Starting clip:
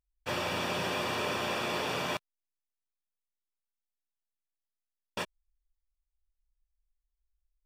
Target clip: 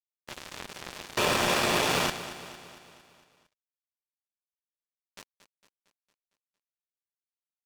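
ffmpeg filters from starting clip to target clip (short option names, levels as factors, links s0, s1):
-filter_complex "[0:a]asettb=1/sr,asplit=3[s0][s1][s2];[s0]atrim=end=1.174[s3];[s1]atrim=start=1.17:end=2.1,asetpts=PTS-STARTPTS,afade=t=in:d=0.004:c=qsin,afade=t=out:st=0.926:d=0.004:c=qsin,acontrast=80[s4];[s2]atrim=start=2.096[s5];[s3][s4]acrossfade=d=0.004:c1=hsin:c2=qsin[s6];[s6][s5]acrossfade=d=0.004:c1=qsin:c2=hsin,acrusher=bits=3:mix=0:aa=0.5,aecho=1:1:228|456|684|912|1140|1368:0.211|0.116|0.0639|0.0352|0.0193|0.0106"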